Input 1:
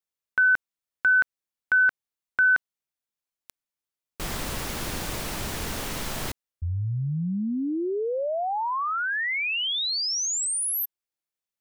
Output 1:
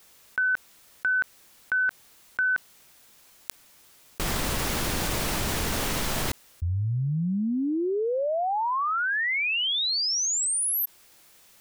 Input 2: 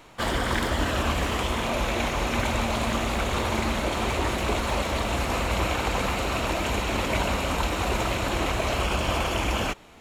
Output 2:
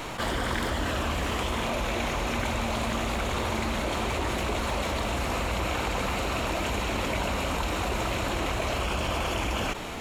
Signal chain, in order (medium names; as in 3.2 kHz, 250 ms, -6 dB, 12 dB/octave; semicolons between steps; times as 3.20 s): level flattener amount 70%; trim -5 dB